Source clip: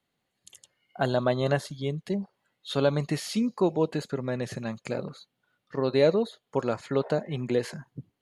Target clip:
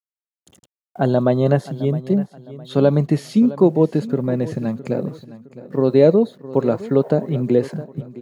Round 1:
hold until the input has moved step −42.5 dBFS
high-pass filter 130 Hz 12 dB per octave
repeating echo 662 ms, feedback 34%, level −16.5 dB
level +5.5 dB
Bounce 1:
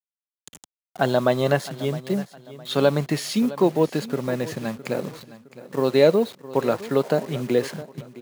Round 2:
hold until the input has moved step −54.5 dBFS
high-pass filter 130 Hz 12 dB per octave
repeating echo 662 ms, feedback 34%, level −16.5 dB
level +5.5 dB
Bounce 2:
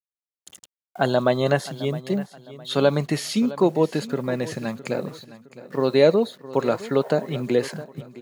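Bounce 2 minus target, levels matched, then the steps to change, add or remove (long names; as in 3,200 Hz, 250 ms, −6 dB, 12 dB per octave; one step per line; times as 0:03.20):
1,000 Hz band +5.0 dB
add after high-pass filter: tilt shelving filter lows +8.5 dB, about 760 Hz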